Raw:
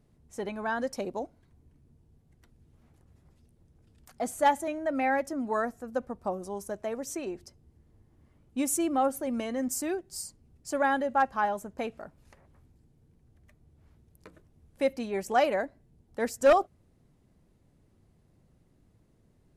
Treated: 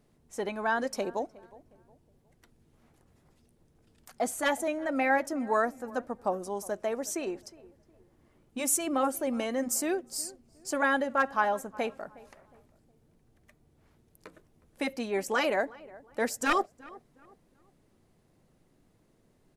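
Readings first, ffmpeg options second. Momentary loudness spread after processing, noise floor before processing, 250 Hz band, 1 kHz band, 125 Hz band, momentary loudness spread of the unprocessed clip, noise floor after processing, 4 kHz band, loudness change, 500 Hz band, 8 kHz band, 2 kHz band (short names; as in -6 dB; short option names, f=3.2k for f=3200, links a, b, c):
13 LU, -66 dBFS, -0.5 dB, -2.0 dB, n/a, 13 LU, -67 dBFS, +3.5 dB, -0.5 dB, -2.0 dB, +3.5 dB, +3.5 dB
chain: -filter_complex "[0:a]afftfilt=real='re*lt(hypot(re,im),0.501)':imag='im*lt(hypot(re,im),0.501)':win_size=1024:overlap=0.75,equalizer=f=62:t=o:w=2.9:g=-12,asplit=2[a][b];[b]adelay=363,lowpass=f=1.5k:p=1,volume=-20dB,asplit=2[c][d];[d]adelay=363,lowpass=f=1.5k:p=1,volume=0.36,asplit=2[e][f];[f]adelay=363,lowpass=f=1.5k:p=1,volume=0.36[g];[c][e][g]amix=inputs=3:normalize=0[h];[a][h]amix=inputs=2:normalize=0,volume=3.5dB"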